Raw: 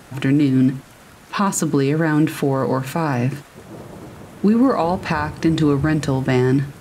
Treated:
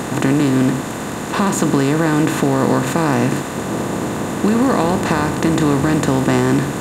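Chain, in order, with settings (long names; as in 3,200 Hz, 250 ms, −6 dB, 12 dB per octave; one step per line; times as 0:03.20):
compressor on every frequency bin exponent 0.4
level −3 dB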